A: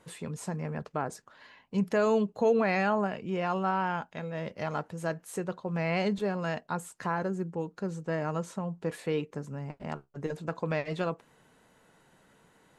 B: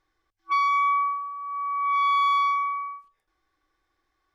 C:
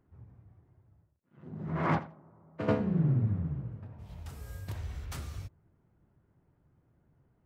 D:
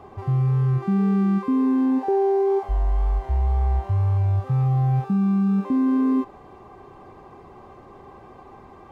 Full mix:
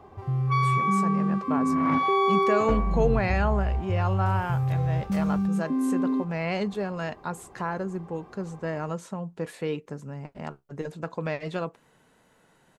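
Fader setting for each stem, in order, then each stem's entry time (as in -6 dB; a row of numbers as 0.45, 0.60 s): +0.5, -3.5, -3.0, -5.5 dB; 0.55, 0.00, 0.00, 0.00 s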